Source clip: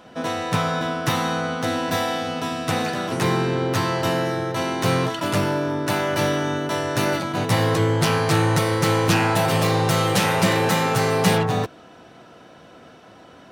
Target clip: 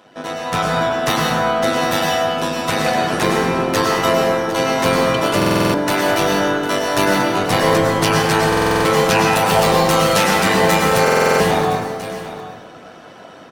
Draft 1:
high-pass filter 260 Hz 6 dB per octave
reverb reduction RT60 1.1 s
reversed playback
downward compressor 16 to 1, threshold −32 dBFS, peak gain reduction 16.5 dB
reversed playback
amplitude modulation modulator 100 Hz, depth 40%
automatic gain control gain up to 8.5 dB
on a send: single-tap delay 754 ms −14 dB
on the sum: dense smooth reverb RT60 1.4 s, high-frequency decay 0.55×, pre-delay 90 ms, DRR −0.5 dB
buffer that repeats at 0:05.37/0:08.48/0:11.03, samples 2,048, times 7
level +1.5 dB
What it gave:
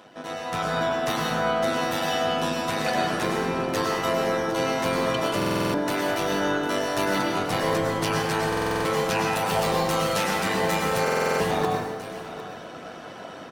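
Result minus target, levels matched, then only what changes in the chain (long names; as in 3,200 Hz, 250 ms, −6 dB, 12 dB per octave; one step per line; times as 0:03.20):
downward compressor: peak gain reduction +11 dB
change: downward compressor 16 to 1, threshold −20.5 dBFS, peak gain reduction 5.5 dB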